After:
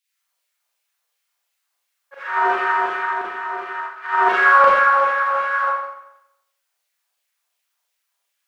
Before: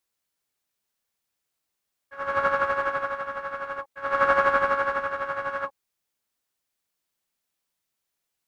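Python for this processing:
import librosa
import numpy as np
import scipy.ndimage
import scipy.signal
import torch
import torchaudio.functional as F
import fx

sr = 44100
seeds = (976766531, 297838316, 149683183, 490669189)

y = fx.filter_lfo_highpass(x, sr, shape='saw_down', hz=2.8, low_hz=540.0, high_hz=2900.0, q=2.1)
y = fx.ring_mod(y, sr, carrier_hz=170.0, at=(2.23, 4.29))
y = fx.rev_schroeder(y, sr, rt60_s=0.82, comb_ms=32, drr_db=-6.0)
y = F.gain(torch.from_numpy(y), -1.0).numpy()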